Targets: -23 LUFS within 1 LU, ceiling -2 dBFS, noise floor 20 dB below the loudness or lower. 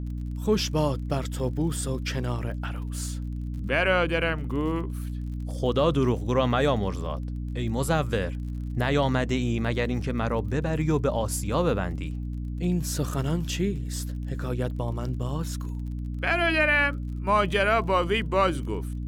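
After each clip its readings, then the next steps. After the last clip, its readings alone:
tick rate 37 per s; hum 60 Hz; highest harmonic 300 Hz; hum level -29 dBFS; loudness -27.0 LUFS; peak level -10.0 dBFS; loudness target -23.0 LUFS
-> de-click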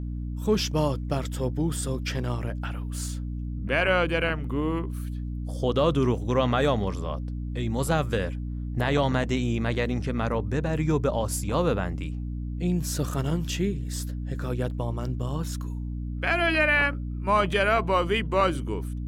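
tick rate 0.052 per s; hum 60 Hz; highest harmonic 300 Hz; hum level -29 dBFS
-> hum notches 60/120/180/240/300 Hz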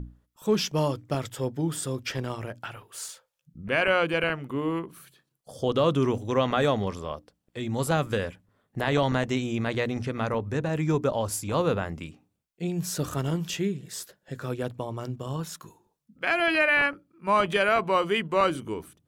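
hum not found; loudness -27.0 LUFS; peak level -10.5 dBFS; loudness target -23.0 LUFS
-> trim +4 dB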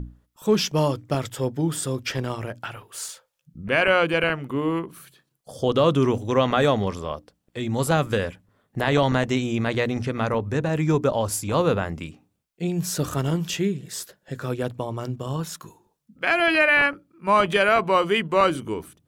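loudness -23.0 LUFS; peak level -6.5 dBFS; noise floor -73 dBFS

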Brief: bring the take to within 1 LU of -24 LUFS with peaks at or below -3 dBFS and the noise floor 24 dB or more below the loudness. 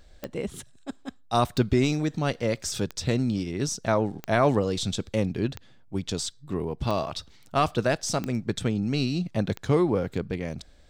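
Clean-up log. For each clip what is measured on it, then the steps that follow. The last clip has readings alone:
clicks found 8; loudness -27.0 LUFS; peak level -10.0 dBFS; loudness target -24.0 LUFS
-> de-click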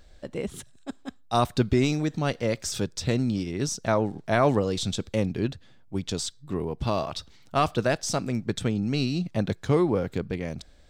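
clicks found 0; loudness -27.0 LUFS; peak level -10.0 dBFS; loudness target -24.0 LUFS
-> trim +3 dB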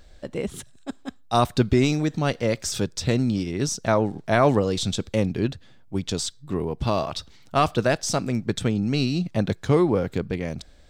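loudness -24.5 LUFS; peak level -7.0 dBFS; noise floor -49 dBFS

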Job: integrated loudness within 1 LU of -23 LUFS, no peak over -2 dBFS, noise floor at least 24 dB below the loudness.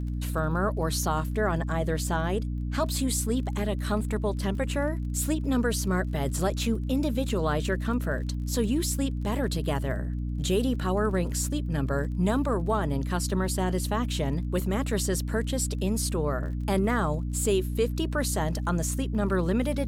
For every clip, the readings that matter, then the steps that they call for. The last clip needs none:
tick rate 26 per s; hum 60 Hz; highest harmonic 300 Hz; hum level -28 dBFS; loudness -28.0 LUFS; peak level -13.0 dBFS; loudness target -23.0 LUFS
-> de-click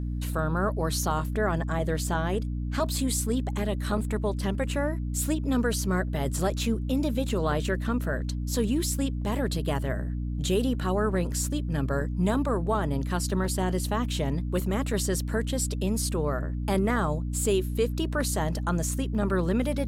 tick rate 0.050 per s; hum 60 Hz; highest harmonic 300 Hz; hum level -28 dBFS
-> hum notches 60/120/180/240/300 Hz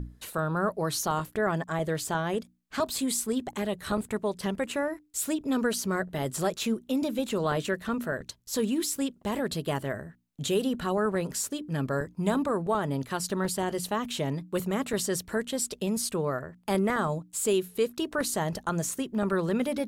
hum not found; loudness -30.0 LUFS; peak level -14.5 dBFS; loudness target -23.0 LUFS
-> trim +7 dB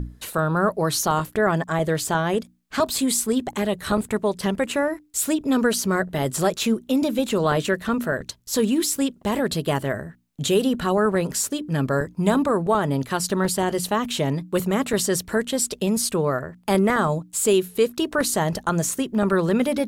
loudness -23.0 LUFS; peak level -7.5 dBFS; noise floor -53 dBFS

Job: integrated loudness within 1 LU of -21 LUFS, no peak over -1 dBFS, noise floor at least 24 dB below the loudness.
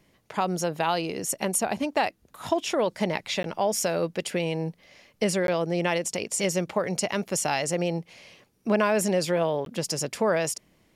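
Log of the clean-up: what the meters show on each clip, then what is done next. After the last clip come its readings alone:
dropouts 3; longest dropout 12 ms; loudness -27.0 LUFS; peak level -10.5 dBFS; loudness target -21.0 LUFS
-> interpolate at 3.43/5.47/9.65 s, 12 ms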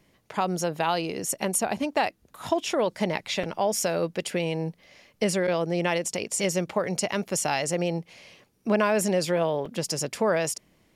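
dropouts 0; loudness -27.0 LUFS; peak level -10.5 dBFS; loudness target -21.0 LUFS
-> trim +6 dB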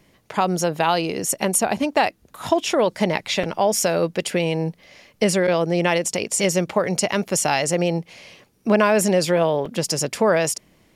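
loudness -21.0 LUFS; peak level -4.5 dBFS; noise floor -59 dBFS

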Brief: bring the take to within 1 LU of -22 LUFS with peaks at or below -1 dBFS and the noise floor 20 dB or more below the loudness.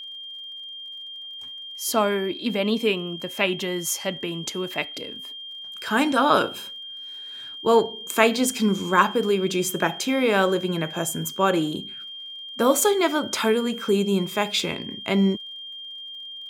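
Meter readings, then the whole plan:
tick rate 41 per s; steady tone 3.2 kHz; tone level -35 dBFS; loudness -23.0 LUFS; peak level -2.5 dBFS; loudness target -22.0 LUFS
-> de-click; band-stop 3.2 kHz, Q 30; trim +1 dB

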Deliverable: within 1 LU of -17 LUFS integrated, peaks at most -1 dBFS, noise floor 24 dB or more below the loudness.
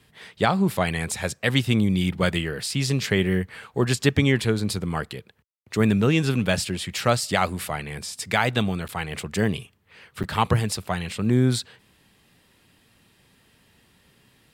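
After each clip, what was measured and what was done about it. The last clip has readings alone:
dropouts 2; longest dropout 8.6 ms; loudness -24.0 LUFS; peak level -5.0 dBFS; loudness target -17.0 LUFS
-> interpolate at 8.88/10.23 s, 8.6 ms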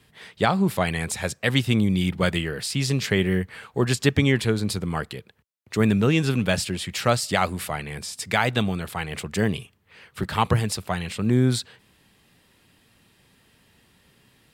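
dropouts 0; loudness -24.0 LUFS; peak level -5.0 dBFS; loudness target -17.0 LUFS
-> trim +7 dB; peak limiter -1 dBFS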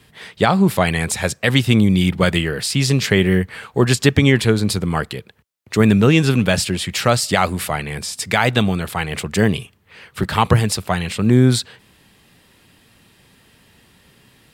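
loudness -17.5 LUFS; peak level -1.0 dBFS; noise floor -54 dBFS

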